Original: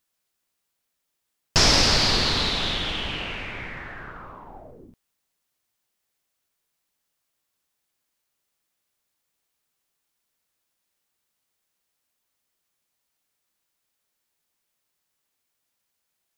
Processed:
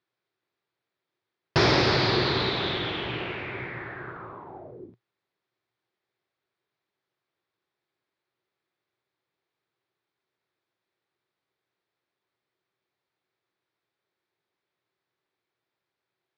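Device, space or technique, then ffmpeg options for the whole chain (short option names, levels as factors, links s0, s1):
guitar cabinet: -af "highpass=110,equalizer=f=120:t=q:w=4:g=8,equalizer=f=230:t=q:w=4:g=-5,equalizer=f=370:t=q:w=4:g=10,equalizer=f=2900:t=q:w=4:g=-7,lowpass=f=3800:w=0.5412,lowpass=f=3800:w=1.3066"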